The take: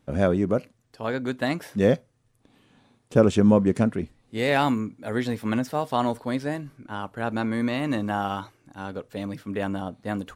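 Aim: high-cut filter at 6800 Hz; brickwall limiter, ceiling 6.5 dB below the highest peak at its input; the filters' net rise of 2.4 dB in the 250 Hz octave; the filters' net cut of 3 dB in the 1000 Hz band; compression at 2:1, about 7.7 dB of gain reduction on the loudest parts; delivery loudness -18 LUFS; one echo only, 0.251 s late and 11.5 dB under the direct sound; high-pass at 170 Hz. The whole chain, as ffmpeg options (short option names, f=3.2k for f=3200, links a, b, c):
-af "highpass=170,lowpass=6.8k,equalizer=f=250:t=o:g=4.5,equalizer=f=1k:t=o:g=-4.5,acompressor=threshold=-26dB:ratio=2,alimiter=limit=-19.5dB:level=0:latency=1,aecho=1:1:251:0.266,volume=13dB"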